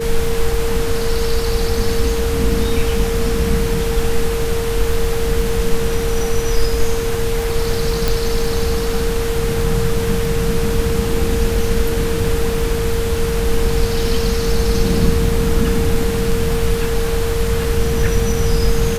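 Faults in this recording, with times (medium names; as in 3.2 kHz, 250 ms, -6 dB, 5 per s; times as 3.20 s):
crackle 25 per s -23 dBFS
whine 460 Hz -20 dBFS
8.08 s: pop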